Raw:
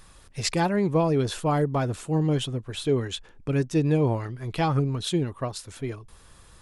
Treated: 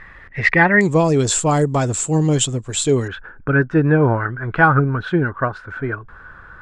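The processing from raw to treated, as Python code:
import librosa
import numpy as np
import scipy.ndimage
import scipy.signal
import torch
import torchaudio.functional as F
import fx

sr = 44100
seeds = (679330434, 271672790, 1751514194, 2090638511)

y = fx.lowpass_res(x, sr, hz=fx.steps((0.0, 1900.0), (0.81, 7500.0), (3.08, 1500.0)), q=12.0)
y = F.gain(torch.from_numpy(y), 7.0).numpy()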